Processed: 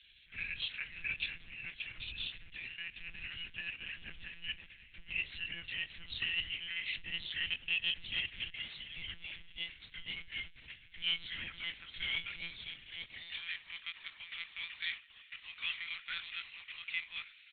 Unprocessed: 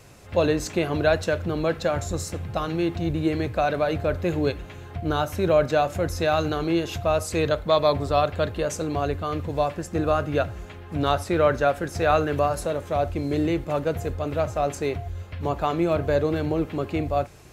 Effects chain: pitch bend over the whole clip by -7.5 st ending unshifted; inverse Chebyshev band-stop 130–1200 Hz, stop band 50 dB; three-band isolator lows -22 dB, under 160 Hz, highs -12 dB, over 2.9 kHz; hum notches 50/100/150/200/250/300/350 Hz; in parallel at -11 dB: companded quantiser 4-bit; on the sum: hard clipper -35 dBFS, distortion -16 dB; high-pass sweep 87 Hz -> 1.1 kHz, 12.82–13.43 s; frequency shift -110 Hz; on a send: delay 1135 ms -22.5 dB; on the sum: monotone LPC vocoder at 8 kHz 170 Hz; trim +8.5 dB

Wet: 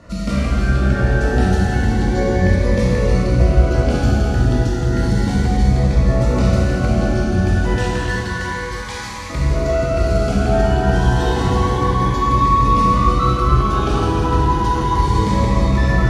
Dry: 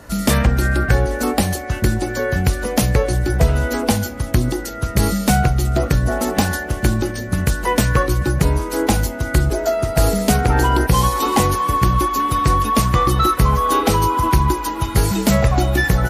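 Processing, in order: 7.77–9.30 s: high-pass 1.1 kHz 24 dB/octave; peak limiter -12 dBFS, peak gain reduction 9 dB; distance through air 110 m; reverberation RT60 5.0 s, pre-delay 13 ms, DRR -7 dB; Shepard-style phaser rising 0.31 Hz; trim -2 dB

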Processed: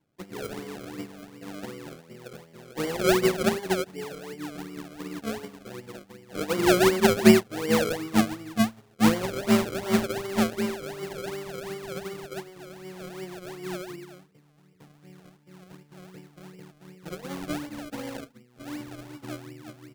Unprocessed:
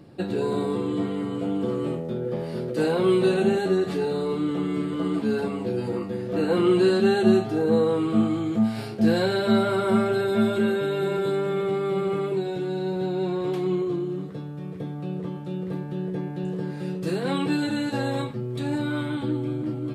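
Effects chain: 3.86–4.50 s: time-frequency box 950–7700 Hz -15 dB; 17.89–18.81 s: comb 4.1 ms, depth 53%; decimation with a swept rate 33×, swing 100% 2.7 Hz; upward expansion 2.5:1, over -35 dBFS; trim +4.5 dB

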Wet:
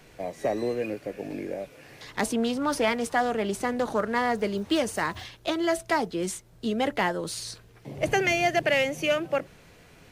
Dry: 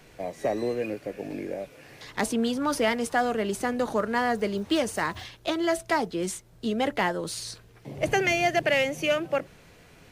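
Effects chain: 2.36–4.44 s: loudspeaker Doppler distortion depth 0.17 ms

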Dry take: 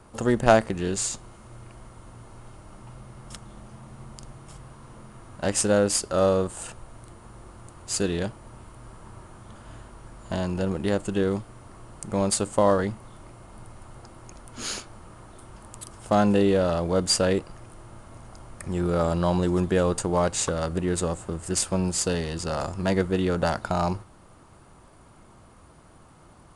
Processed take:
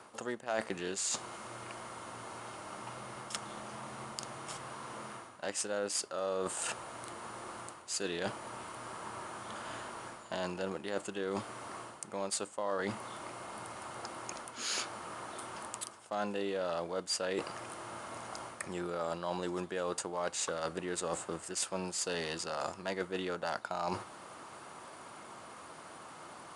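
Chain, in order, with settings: frequency weighting A; reverse; compression 6:1, threshold -41 dBFS, peak gain reduction 26 dB; reverse; trim +7 dB

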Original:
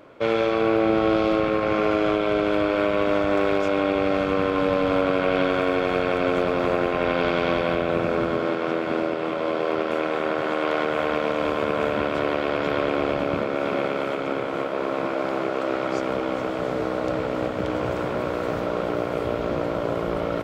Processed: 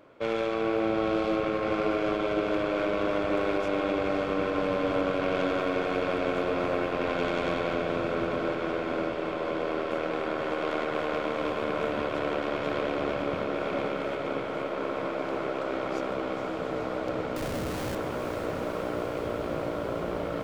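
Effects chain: tracing distortion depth 0.038 ms; 17.36–17.95 s: Schmitt trigger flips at -28.5 dBFS; on a send: echo that smears into a reverb 487 ms, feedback 79%, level -9 dB; on the sum: trim -7 dB

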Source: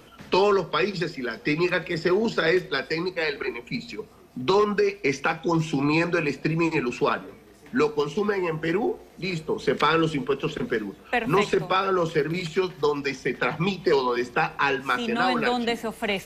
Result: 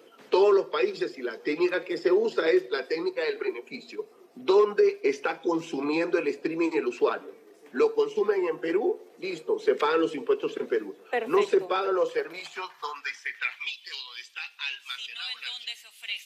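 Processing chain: coarse spectral quantiser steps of 15 dB; high-pass sweep 390 Hz -> 3.1 kHz, 11.82–13.82 s; trim -6 dB

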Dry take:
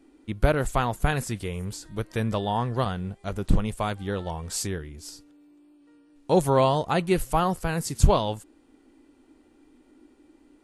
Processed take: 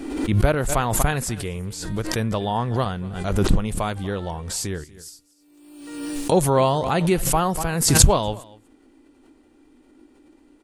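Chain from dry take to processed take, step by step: 4.84–6.32 s: pre-emphasis filter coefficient 0.8; delay 240 ms -21.5 dB; swell ahead of each attack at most 48 dB/s; trim +2 dB

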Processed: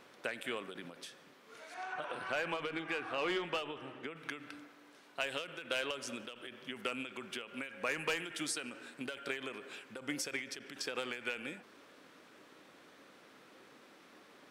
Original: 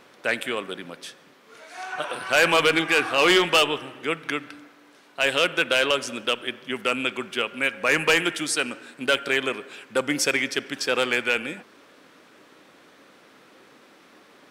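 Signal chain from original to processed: compression 2.5:1, threshold -29 dBFS, peak gain reduction 9.5 dB; 1.74–4.16 s: low-pass 2.3 kHz 6 dB/octave; endings held to a fixed fall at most 120 dB/s; trim -6.5 dB

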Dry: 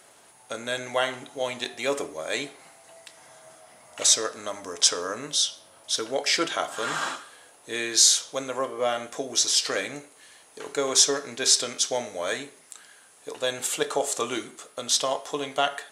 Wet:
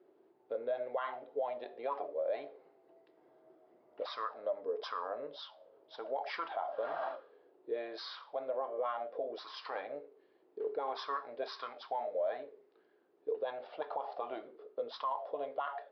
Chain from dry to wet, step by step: auto-wah 350–1100 Hz, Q 7.8, up, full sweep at -20 dBFS; peak limiter -33 dBFS, peak gain reduction 11.5 dB; resampled via 11.025 kHz; trim +6 dB

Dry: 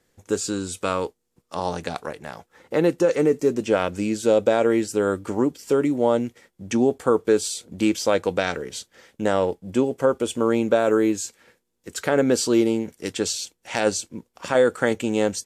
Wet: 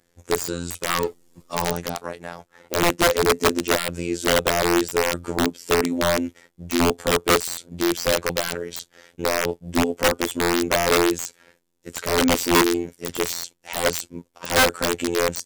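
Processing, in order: robot voice 86.1 Hz; integer overflow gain 13.5 dB; 0.89–1.73 s: power-law waveshaper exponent 0.7; trim +3 dB

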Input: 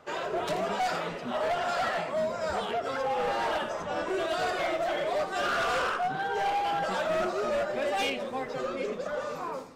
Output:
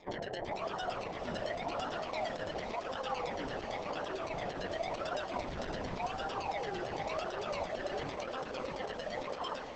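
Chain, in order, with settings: bass shelf 160 Hz -11 dB; de-hum 369.7 Hz, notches 33; compression 6:1, threshold -38 dBFS, peak gain reduction 11 dB; decimation with a swept rate 29×, swing 60% 0.92 Hz; LFO low-pass saw down 8.9 Hz 610–6300 Hz; on a send: echo that smears into a reverb 530 ms, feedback 46%, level -7 dB; on the sum: Opus 12 kbps 48 kHz

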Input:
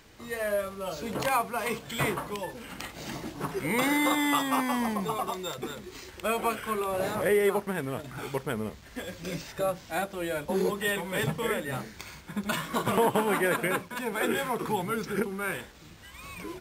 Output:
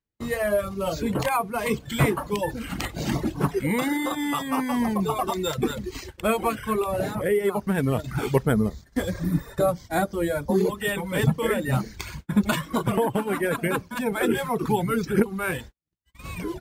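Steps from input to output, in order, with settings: gain riding within 5 dB 0.5 s; gate -42 dBFS, range -46 dB; bass shelf 330 Hz +10.5 dB; 9.17–9.52 s: spectral replace 360–8900 Hz both; 8.49–10.59 s: peaking EQ 2.7 kHz -12.5 dB 0.29 oct; reverb removal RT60 0.91 s; trim +2.5 dB

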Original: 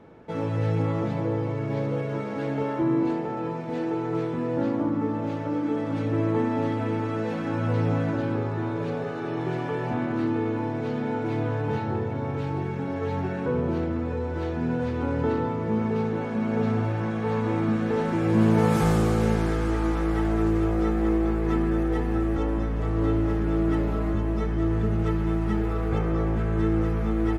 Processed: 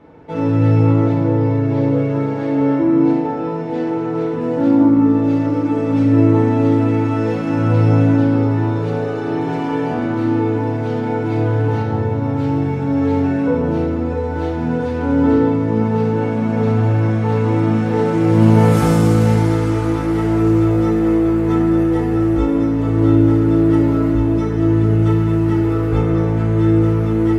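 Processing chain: treble shelf 7.6 kHz -7 dB, from 4.41 s +4 dB; FDN reverb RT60 0.69 s, low-frequency decay 1.3×, high-frequency decay 1×, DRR -0.5 dB; trim +2.5 dB

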